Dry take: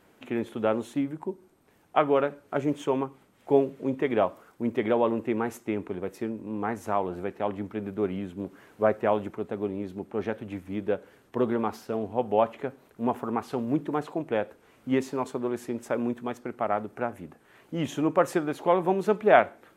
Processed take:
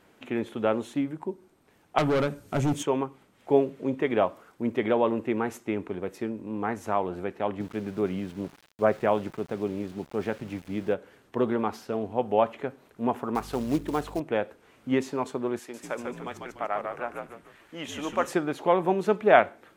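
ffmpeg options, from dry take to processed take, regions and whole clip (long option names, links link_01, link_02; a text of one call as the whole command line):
ffmpeg -i in.wav -filter_complex "[0:a]asettb=1/sr,asplit=3[link_01][link_02][link_03];[link_01]atrim=end=1.984[link_04];[link_02]atrim=start=1.98:end=2.83,asetpts=PTS-STARTPTS,afade=type=in:duration=0.004:curve=qsin,afade=type=out:start_time=0.846:duration=0.004:curve=qsin,bass=frequency=250:gain=14,treble=frequency=4000:gain=14,asoftclip=type=hard:threshold=-21dB[link_05];[link_03]atrim=start=2.826[link_06];[link_04][link_05]acrossfade=duration=0.004:curve1=hsin:curve2=qsin[link_07];[link_07][link_06]acrossfade=duration=0.004:curve1=qsin:curve2=hsin,asettb=1/sr,asplit=3[link_08][link_09][link_10];[link_08]atrim=end=7.604[link_11];[link_09]atrim=start=7.6:end=10.94,asetpts=PTS-STARTPTS,afade=type=in:duration=0.004:curve=qsin,afade=type=out:start_time=3.336:duration=0.004:curve=qsin,equalizer=frequency=150:width_type=o:width=0.24:gain=11.5,aeval=exprs='val(0)*gte(abs(val(0)),0.00501)':channel_layout=same[link_12];[link_10]atrim=start=10.936[link_13];[link_11][link_12]acrossfade=duration=0.004:curve1=hsin:curve2=qsin[link_14];[link_14][link_13]acrossfade=duration=0.004:curve1=qsin:curve2=hsin,asettb=1/sr,asplit=3[link_15][link_16][link_17];[link_15]atrim=end=13.354[link_18];[link_16]atrim=start=13.35:end=14.2,asetpts=PTS-STARTPTS,afade=type=in:duration=0.004:curve=qsin,afade=type=out:start_time=0.846:duration=0.004:curve=qsin,highshelf=frequency=8600:gain=10,aeval=exprs='val(0)+0.00631*(sin(2*PI*50*n/s)+sin(2*PI*2*50*n/s)/2+sin(2*PI*3*50*n/s)/3+sin(2*PI*4*50*n/s)/4+sin(2*PI*5*50*n/s)/5)':channel_layout=same,acrusher=bits=5:mode=log:mix=0:aa=0.000001[link_19];[link_17]atrim=start=14.196[link_20];[link_18][link_19]acrossfade=duration=0.004:curve1=hsin:curve2=qsin[link_21];[link_21][link_20]acrossfade=duration=0.004:curve1=qsin:curve2=hsin,asettb=1/sr,asplit=3[link_22][link_23][link_24];[link_22]atrim=end=15.594[link_25];[link_23]atrim=start=15.59:end=18.27,asetpts=PTS-STARTPTS,afade=type=in:duration=0.004:curve=qsin,afade=type=out:start_time=2.676:duration=0.004:curve=qsin,highpass=frequency=870:poles=1,asplit=6[link_26][link_27][link_28][link_29][link_30][link_31];[link_27]adelay=146,afreqshift=-69,volume=-4dB[link_32];[link_28]adelay=292,afreqshift=-138,volume=-12.9dB[link_33];[link_29]adelay=438,afreqshift=-207,volume=-21.7dB[link_34];[link_30]adelay=584,afreqshift=-276,volume=-30.6dB[link_35];[link_31]adelay=730,afreqshift=-345,volume=-39.5dB[link_36];[link_26][link_32][link_33][link_34][link_35][link_36]amix=inputs=6:normalize=0,atrim=end_sample=118188[link_37];[link_24]atrim=start=18.266[link_38];[link_25][link_37]acrossfade=duration=0.004:curve1=hsin:curve2=qsin[link_39];[link_39][link_38]acrossfade=duration=0.004:curve1=qsin:curve2=hsin,lowpass=frequency=3600:poles=1,highshelf=frequency=2800:gain=8" out.wav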